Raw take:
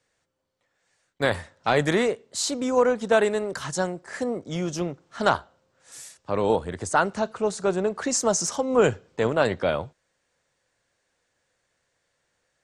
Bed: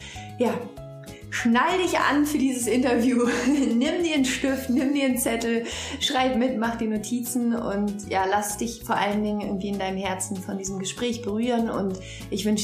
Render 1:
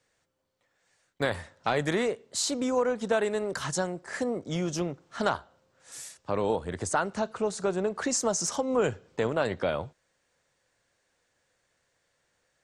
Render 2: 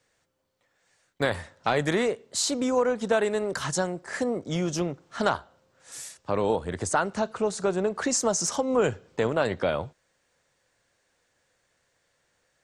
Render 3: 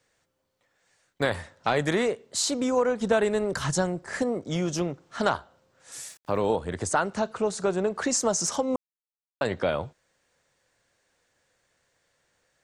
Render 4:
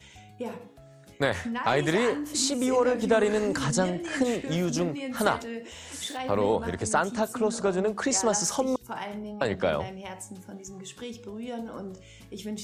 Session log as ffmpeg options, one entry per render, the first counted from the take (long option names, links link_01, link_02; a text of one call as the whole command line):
ffmpeg -i in.wav -af "acompressor=threshold=-27dB:ratio=2" out.wav
ffmpeg -i in.wav -af "volume=2.5dB" out.wav
ffmpeg -i in.wav -filter_complex "[0:a]asettb=1/sr,asplit=3[link_01][link_02][link_03];[link_01]atrim=end=3.004[link_04];[link_02]atrim=start=3:end=4.23,asetpts=PTS-STARTPTS,afade=type=in:duration=0.004:curve=qsin,afade=type=out:start_time=1.226:duration=0.004:curve=qsin,lowshelf=frequency=140:gain=11[link_05];[link_03]atrim=start=4.226[link_06];[link_04][link_05]acrossfade=duration=0.004:curve1=hsin:curve2=qsin[link_07];[link_07][link_06]acrossfade=duration=0.004:curve1=qsin:curve2=hsin,asettb=1/sr,asplit=3[link_08][link_09][link_10];[link_08]atrim=end=6.084[link_11];[link_09]atrim=start=6.08:end=6.5,asetpts=PTS-STARTPTS,afade=type=in:duration=0.004:curve=qsin,afade=type=out:start_time=0.416:duration=0.004:curve=qsin,aeval=exprs='val(0)*gte(abs(val(0)),0.00266)':channel_layout=same[link_12];[link_10]atrim=start=6.496[link_13];[link_11][link_12]acrossfade=duration=0.004:curve1=hsin:curve2=qsin[link_14];[link_14][link_13]acrossfade=duration=0.004:curve1=qsin:curve2=hsin,asplit=3[link_15][link_16][link_17];[link_15]atrim=end=8.76,asetpts=PTS-STARTPTS,afade=type=out:start_time=8.756:duration=0.004:curve=hsin[link_18];[link_16]atrim=start=8.76:end=9.41,asetpts=PTS-STARTPTS,volume=0[link_19];[link_17]atrim=start=9.41,asetpts=PTS-STARTPTS,afade=type=in:duration=0.004:curve=hsin[link_20];[link_18][link_19][link_20]concat=n=3:v=0:a=1" out.wav
ffmpeg -i in.wav -i bed.wav -filter_complex "[1:a]volume=-12dB[link_01];[0:a][link_01]amix=inputs=2:normalize=0" out.wav